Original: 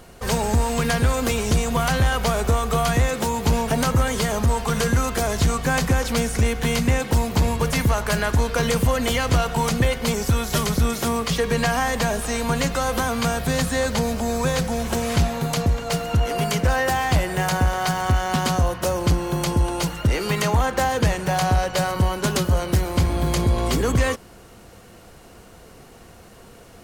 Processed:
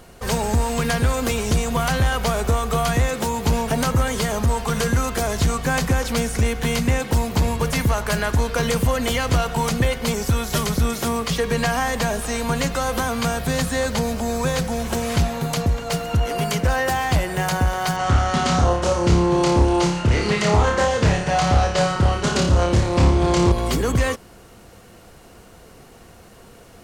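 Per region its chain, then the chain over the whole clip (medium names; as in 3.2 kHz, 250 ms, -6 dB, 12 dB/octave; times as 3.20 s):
17.96–23.52 s: low-pass 8.1 kHz 24 dB/octave + flutter echo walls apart 4.9 m, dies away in 0.55 s + loudspeaker Doppler distortion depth 0.29 ms
whole clip: none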